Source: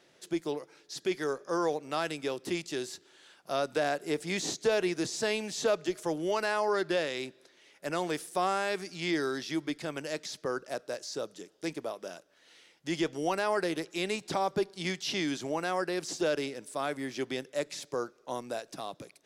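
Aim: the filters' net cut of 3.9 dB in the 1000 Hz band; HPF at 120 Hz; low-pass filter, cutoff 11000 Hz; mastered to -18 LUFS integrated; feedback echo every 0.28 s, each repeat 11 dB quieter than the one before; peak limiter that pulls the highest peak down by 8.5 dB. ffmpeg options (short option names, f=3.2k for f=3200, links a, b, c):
-af "highpass=120,lowpass=11k,equalizer=f=1k:t=o:g=-5.5,alimiter=level_in=2dB:limit=-24dB:level=0:latency=1,volume=-2dB,aecho=1:1:280|560|840:0.282|0.0789|0.0221,volume=18.5dB"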